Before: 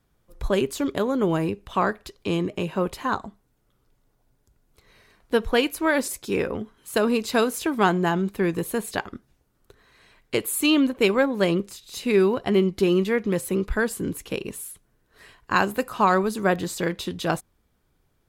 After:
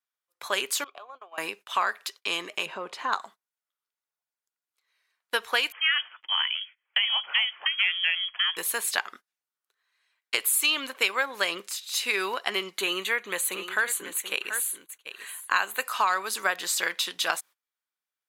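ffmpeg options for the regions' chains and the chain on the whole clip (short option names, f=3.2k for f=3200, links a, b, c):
-filter_complex "[0:a]asettb=1/sr,asplit=3[a][b][c];[a]atrim=end=0.844[d];[b]atrim=start=0.84:end=1.38,asetpts=PTS-STARTPTS,afade=t=in:d=0.004:c=qsin,afade=t=out:st=0.536:d=0.004:c=qsin,asplit=3[e][f][g];[e]bandpass=f=730:t=q:w=8,volume=0dB[h];[f]bandpass=f=1.09k:t=q:w=8,volume=-6dB[i];[g]bandpass=f=2.44k:t=q:w=8,volume=-9dB[j];[h][i][j]amix=inputs=3:normalize=0,acompressor=threshold=-36dB:ratio=12:attack=3.2:release=140:knee=1:detection=peak[k];[c]atrim=start=1.376[l];[d][k]acrossfade=d=0.004:c1=hsin:c2=qsin[m];[m][l]acrossfade=d=0.004:c1=qsin:c2=hsin,asettb=1/sr,asplit=3[n][o][p];[n]atrim=end=2.664[q];[o]atrim=start=2.66:end=3.13,asetpts=PTS-STARTPTS,afade=t=in:d=0.004:c=qsin,afade=t=out:st=0.466:d=0.004:c=qsin,lowpass=6.6k,tiltshelf=f=850:g=8,acompressor=threshold=-20dB:ratio=4:attack=3.2:release=140:knee=1:detection=peak[r];[p]atrim=start=3.126[s];[q][r]acrossfade=d=0.004:c1=hsin:c2=qsin[t];[t][s]acrossfade=d=0.004:c1=qsin:c2=hsin,asettb=1/sr,asplit=3[u][v][w];[u]atrim=end=5.724[x];[v]atrim=start=5.72:end=8.57,asetpts=PTS-STARTPTS,afade=t=in:d=0.004:c=qsin,afade=t=out:st=2.846:d=0.004:c=qsin,highpass=f=1k:p=1,volume=16.5dB,asoftclip=hard,volume=-16.5dB,lowpass=f=3k:t=q:w=0.5098,lowpass=f=3k:t=q:w=0.6013,lowpass=f=3k:t=q:w=0.9,lowpass=f=3k:t=q:w=2.563,afreqshift=-3500[y];[w]atrim=start=8.566[z];[x][y]acrossfade=d=0.004:c1=hsin:c2=qsin[aa];[aa][z]acrossfade=d=0.004:c1=qsin:c2=hsin,asettb=1/sr,asplit=3[ab][ac][ad];[ab]atrim=end=12.784[ae];[ac]atrim=start=12.78:end=15.84,asetpts=PTS-STARTPTS,afade=t=in:d=0.004:c=qsin,afade=t=out:st=3.056:d=0.004:c=qsin,asuperstop=centerf=5200:order=4:qfactor=3.4,aecho=1:1:733:0.251,atrim=end_sample=134946[af];[ad]atrim=start=15.836[ag];[ae][af]acrossfade=d=0.004:c1=hsin:c2=qsin[ah];[ah][ag]acrossfade=d=0.004:c1=qsin:c2=hsin,highpass=1.3k,agate=range=-23dB:threshold=-52dB:ratio=16:detection=peak,acompressor=threshold=-30dB:ratio=3,volume=8dB"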